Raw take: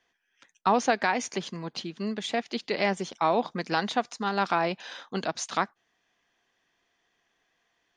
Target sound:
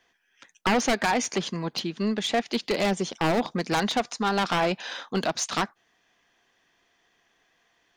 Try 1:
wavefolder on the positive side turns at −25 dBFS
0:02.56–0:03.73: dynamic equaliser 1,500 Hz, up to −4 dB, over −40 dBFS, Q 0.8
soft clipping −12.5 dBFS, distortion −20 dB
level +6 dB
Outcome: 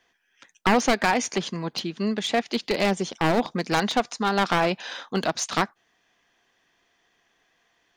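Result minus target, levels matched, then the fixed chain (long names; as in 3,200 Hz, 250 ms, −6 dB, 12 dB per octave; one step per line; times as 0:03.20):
soft clipping: distortion −10 dB
wavefolder on the positive side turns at −25 dBFS
0:02.56–0:03.73: dynamic equaliser 1,500 Hz, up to −4 dB, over −40 dBFS, Q 0.8
soft clipping −20.5 dBFS, distortion −10 dB
level +6 dB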